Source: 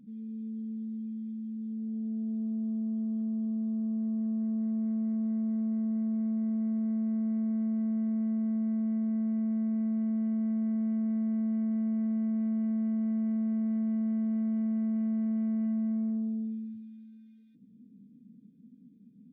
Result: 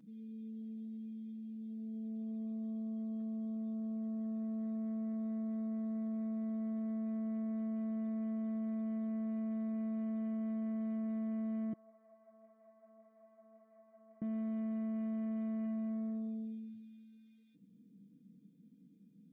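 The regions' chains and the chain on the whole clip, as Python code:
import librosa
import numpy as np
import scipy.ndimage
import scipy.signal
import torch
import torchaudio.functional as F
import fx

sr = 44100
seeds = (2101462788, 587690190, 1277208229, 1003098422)

y = fx.chain(x, sr, fx.ladder_bandpass(hz=870.0, resonance_pct=45),
    fx.ensemble(), at=(11.73, 14.22))
y = fx.low_shelf(y, sr, hz=270.0, db=-9.5)
y = y + 0.52 * np.pad(y, (int(6.2 * sr / 1000.0), 0))[:len(y)]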